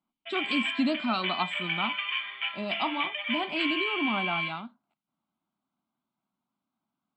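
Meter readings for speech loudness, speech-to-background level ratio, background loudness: -32.0 LUFS, -1.5 dB, -30.5 LUFS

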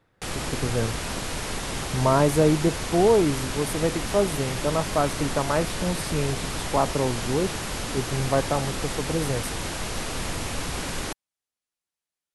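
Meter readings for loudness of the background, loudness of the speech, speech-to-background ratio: -30.5 LUFS, -25.5 LUFS, 5.0 dB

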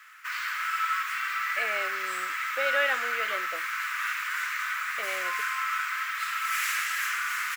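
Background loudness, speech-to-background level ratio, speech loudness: -29.0 LUFS, -3.0 dB, -32.0 LUFS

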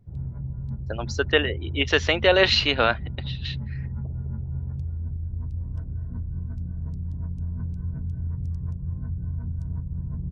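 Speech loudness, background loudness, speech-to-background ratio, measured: -21.5 LUFS, -32.5 LUFS, 11.0 dB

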